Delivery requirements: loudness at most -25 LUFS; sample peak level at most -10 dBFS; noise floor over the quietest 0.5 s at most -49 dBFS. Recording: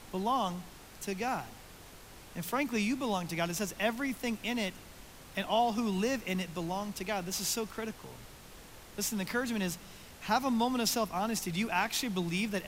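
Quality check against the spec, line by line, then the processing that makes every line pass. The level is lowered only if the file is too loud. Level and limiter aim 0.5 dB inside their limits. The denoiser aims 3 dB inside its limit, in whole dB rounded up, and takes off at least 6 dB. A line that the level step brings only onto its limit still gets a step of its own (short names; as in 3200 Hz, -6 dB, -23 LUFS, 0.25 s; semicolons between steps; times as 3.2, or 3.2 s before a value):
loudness -33.0 LUFS: OK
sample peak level -16.5 dBFS: OK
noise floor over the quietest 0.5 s -51 dBFS: OK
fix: none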